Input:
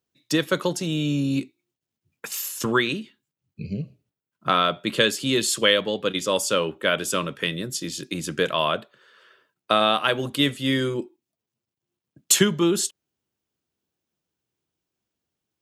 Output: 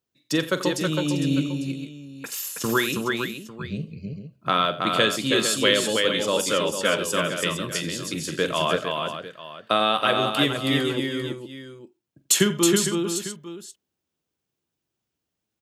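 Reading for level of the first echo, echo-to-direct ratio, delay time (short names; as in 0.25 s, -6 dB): -13.5 dB, -2.0 dB, 44 ms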